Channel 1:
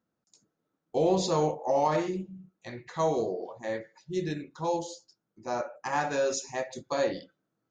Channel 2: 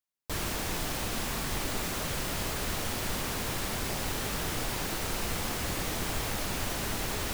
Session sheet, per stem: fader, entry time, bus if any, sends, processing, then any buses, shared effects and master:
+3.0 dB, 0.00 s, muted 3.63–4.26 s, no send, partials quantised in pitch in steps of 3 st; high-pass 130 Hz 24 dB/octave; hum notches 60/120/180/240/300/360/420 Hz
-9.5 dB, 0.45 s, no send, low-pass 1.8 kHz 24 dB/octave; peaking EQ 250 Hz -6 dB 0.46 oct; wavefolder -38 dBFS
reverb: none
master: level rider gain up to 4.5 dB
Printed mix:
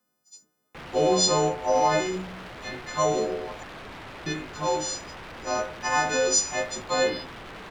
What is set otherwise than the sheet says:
stem 2 -9.5 dB -> +1.5 dB; master: missing level rider gain up to 4.5 dB

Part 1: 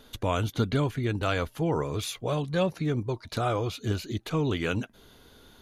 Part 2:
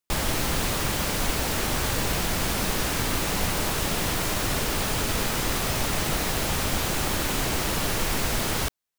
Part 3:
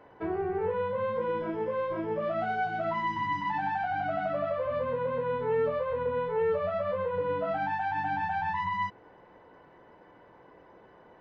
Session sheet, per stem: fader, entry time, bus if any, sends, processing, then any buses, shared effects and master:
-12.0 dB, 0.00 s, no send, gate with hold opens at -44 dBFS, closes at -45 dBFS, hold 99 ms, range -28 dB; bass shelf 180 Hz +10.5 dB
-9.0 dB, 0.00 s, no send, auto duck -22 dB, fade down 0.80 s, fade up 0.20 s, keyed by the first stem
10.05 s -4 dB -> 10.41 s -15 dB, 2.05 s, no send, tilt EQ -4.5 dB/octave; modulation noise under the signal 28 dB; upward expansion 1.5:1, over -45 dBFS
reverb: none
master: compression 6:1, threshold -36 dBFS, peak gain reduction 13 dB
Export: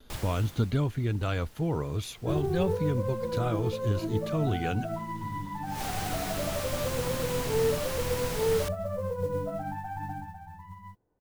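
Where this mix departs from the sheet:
stem 1 -12.0 dB -> -6.0 dB; master: missing compression 6:1, threshold -36 dBFS, peak gain reduction 13 dB

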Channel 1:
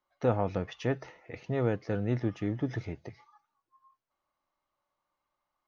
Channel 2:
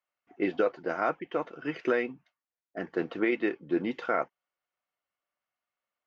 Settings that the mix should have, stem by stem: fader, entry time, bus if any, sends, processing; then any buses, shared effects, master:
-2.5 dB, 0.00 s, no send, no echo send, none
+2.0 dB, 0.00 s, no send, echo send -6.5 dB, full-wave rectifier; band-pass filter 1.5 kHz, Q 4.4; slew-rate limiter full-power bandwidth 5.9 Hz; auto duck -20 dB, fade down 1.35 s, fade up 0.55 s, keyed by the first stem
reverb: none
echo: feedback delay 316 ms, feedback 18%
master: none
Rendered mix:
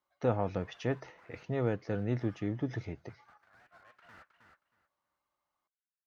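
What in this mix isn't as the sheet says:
stem 2 +2.0 dB -> -6.5 dB; master: extra high-pass 40 Hz

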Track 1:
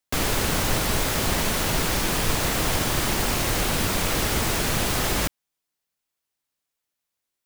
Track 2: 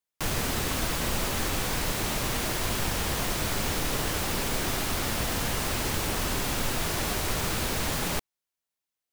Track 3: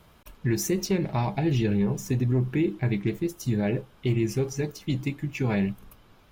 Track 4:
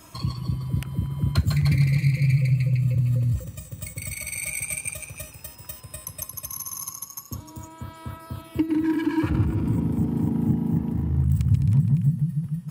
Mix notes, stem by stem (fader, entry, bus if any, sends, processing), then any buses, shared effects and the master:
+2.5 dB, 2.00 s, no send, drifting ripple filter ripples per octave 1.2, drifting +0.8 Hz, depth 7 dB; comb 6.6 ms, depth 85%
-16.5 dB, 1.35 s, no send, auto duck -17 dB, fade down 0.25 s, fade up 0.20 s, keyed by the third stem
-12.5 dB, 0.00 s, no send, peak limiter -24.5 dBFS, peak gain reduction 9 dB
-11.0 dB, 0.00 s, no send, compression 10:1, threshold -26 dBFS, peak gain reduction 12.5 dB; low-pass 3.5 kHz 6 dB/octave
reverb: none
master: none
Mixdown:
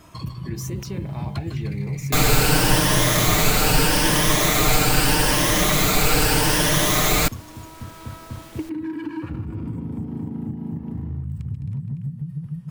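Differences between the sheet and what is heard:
stem 2: entry 1.35 s -> 0.50 s; stem 3 -12.5 dB -> -1.5 dB; stem 4 -11.0 dB -> +0.5 dB

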